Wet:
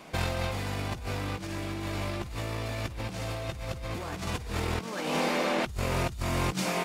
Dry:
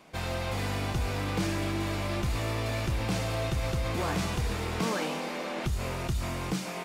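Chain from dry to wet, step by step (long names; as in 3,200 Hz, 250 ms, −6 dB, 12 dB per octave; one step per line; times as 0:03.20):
compressor whose output falls as the input rises −34 dBFS, ratio −0.5
level +3 dB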